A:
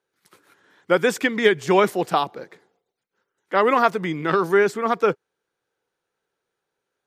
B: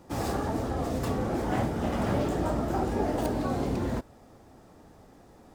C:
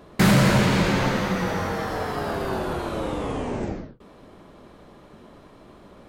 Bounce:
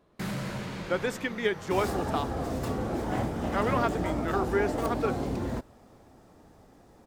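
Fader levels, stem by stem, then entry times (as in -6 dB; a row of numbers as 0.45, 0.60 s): -11.0, -2.0, -17.0 dB; 0.00, 1.60, 0.00 s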